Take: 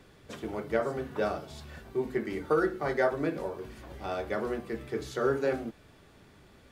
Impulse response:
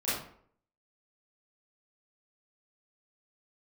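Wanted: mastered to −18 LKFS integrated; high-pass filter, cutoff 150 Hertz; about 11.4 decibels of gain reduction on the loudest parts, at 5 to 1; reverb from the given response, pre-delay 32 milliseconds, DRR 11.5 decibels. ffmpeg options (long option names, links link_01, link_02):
-filter_complex "[0:a]highpass=150,acompressor=threshold=-35dB:ratio=5,asplit=2[link_01][link_02];[1:a]atrim=start_sample=2205,adelay=32[link_03];[link_02][link_03]afir=irnorm=-1:irlink=0,volume=-19.5dB[link_04];[link_01][link_04]amix=inputs=2:normalize=0,volume=22dB"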